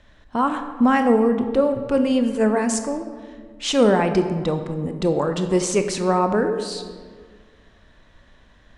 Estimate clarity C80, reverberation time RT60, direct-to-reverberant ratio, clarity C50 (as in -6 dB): 10.0 dB, 1.7 s, 7.0 dB, 8.5 dB